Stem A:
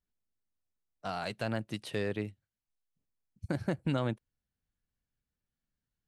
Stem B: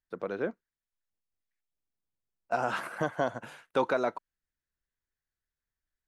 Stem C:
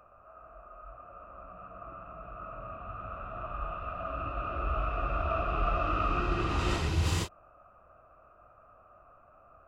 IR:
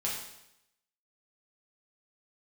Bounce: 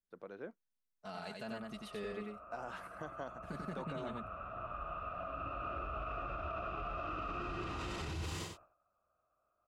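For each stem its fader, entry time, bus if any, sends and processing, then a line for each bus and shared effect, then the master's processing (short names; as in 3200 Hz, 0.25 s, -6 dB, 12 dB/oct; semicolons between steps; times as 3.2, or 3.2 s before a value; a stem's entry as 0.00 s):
-11.5 dB, 0.00 s, no send, echo send -3.5 dB, comb 4.7 ms, depth 76%
-14.5 dB, 0.00 s, no send, no echo send, dry
-4.5 dB, 1.20 s, no send, echo send -10.5 dB, gate -53 dBFS, range -18 dB; low shelf 61 Hz -10.5 dB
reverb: off
echo: echo 91 ms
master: limiter -32.5 dBFS, peak gain reduction 9.5 dB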